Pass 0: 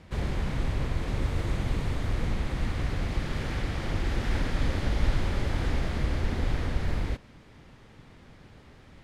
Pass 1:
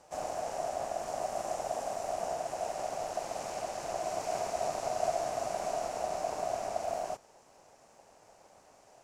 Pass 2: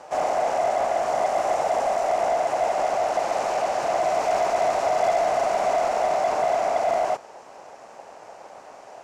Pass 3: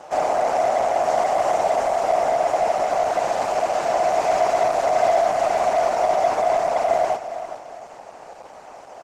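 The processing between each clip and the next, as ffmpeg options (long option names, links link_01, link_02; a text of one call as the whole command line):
ffmpeg -i in.wav -af "highshelf=frequency=4800:width_type=q:width=3:gain=10,aeval=exprs='val(0)*sin(2*PI*680*n/s)':channel_layout=same,volume=-5.5dB" out.wav
ffmpeg -i in.wav -filter_complex "[0:a]asplit=2[link_01][link_02];[link_02]highpass=frequency=720:poles=1,volume=20dB,asoftclip=type=tanh:threshold=-17.5dB[link_03];[link_01][link_03]amix=inputs=2:normalize=0,lowpass=frequency=1400:poles=1,volume=-6dB,volume=6dB" out.wav
ffmpeg -i in.wav -filter_complex "[0:a]asplit=2[link_01][link_02];[link_02]aecho=0:1:408|816|1224:0.251|0.0804|0.0257[link_03];[link_01][link_03]amix=inputs=2:normalize=0,volume=3.5dB" -ar 48000 -c:a libopus -b:a 16k out.opus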